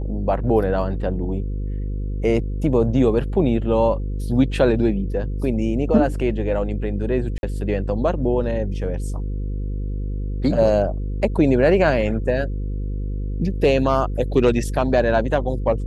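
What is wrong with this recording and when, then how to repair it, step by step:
buzz 50 Hz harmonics 10 -25 dBFS
7.38–7.43 s: dropout 51 ms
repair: de-hum 50 Hz, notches 10; interpolate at 7.38 s, 51 ms

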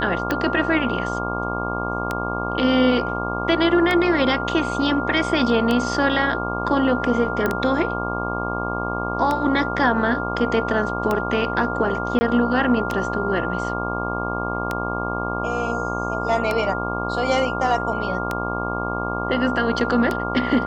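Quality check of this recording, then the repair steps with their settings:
buzz 60 Hz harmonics 20 -27 dBFS
tick 33 1/3 rpm -9 dBFS
whine 1.4 kHz -27 dBFS
7.46 s: pop -9 dBFS
12.19–12.21 s: dropout 20 ms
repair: de-click; de-hum 60 Hz, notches 20; band-stop 1.4 kHz, Q 30; interpolate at 12.19 s, 20 ms

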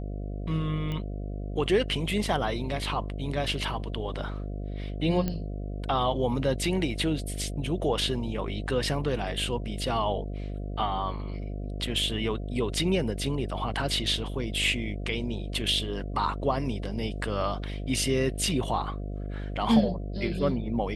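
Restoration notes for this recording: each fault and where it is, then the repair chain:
buzz 50 Hz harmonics 14 -34 dBFS
0.92 s: pop -22 dBFS
5.28 s: pop -16 dBFS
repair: de-click; de-hum 50 Hz, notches 14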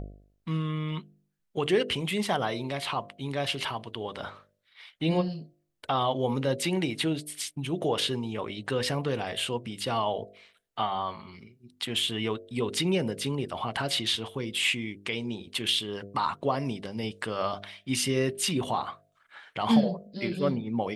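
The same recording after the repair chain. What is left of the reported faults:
0.92 s: pop

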